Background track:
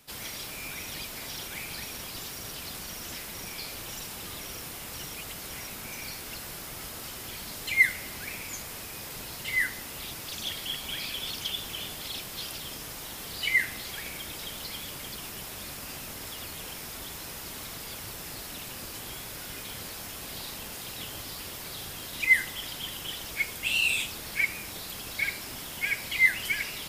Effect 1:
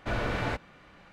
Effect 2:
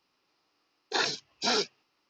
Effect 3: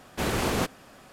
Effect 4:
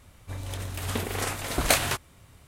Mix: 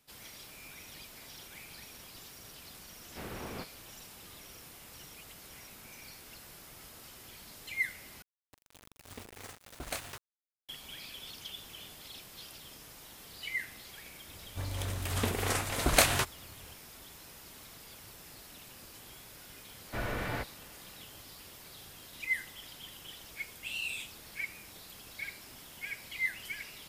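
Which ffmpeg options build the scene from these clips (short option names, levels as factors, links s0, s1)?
-filter_complex "[4:a]asplit=2[s0][s1];[0:a]volume=0.266[s2];[3:a]acrossover=split=3700[s3][s4];[s4]acompressor=threshold=0.00355:ratio=4:attack=1:release=60[s5];[s3][s5]amix=inputs=2:normalize=0[s6];[s0]aeval=exprs='val(0)*gte(abs(val(0)),0.0422)':c=same[s7];[1:a]equalizer=f=1900:t=o:w=0.36:g=3.5[s8];[s2]asplit=2[s9][s10];[s9]atrim=end=8.224[s11];[s7]atrim=end=2.47,asetpts=PTS-STARTPTS,volume=0.15[s12];[s10]atrim=start=10.686[s13];[s6]atrim=end=1.12,asetpts=PTS-STARTPTS,volume=0.168,afade=t=in:d=0.004:c=hsin,afade=t=out:st=1.116:d=0.004:c=hsin,adelay=2980[s14];[s1]atrim=end=2.47,asetpts=PTS-STARTPTS,volume=0.841,afade=t=in:d=0.004:c=hsin,afade=t=out:st=2.466:d=0.004:c=hsin,adelay=629748S[s15];[s8]atrim=end=1.12,asetpts=PTS-STARTPTS,volume=0.531,afade=t=in:d=0.004:c=hsin,afade=t=out:st=1.116:d=0.004:c=hsin,adelay=19870[s16];[s11][s12]acrossfade=d=0.004:c1=hsin:c2=hsin[s17];[s17][s13]acrossfade=d=0.004:c1=hsin:c2=hsin[s18];[s18][s14][s15][s16]amix=inputs=4:normalize=0"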